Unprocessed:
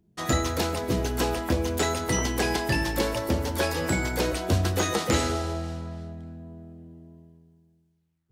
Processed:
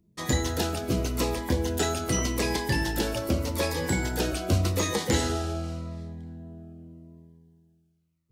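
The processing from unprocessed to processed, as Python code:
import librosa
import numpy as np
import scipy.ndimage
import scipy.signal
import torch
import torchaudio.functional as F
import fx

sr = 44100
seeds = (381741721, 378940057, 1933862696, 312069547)

y = fx.notch_cascade(x, sr, direction='falling', hz=0.85)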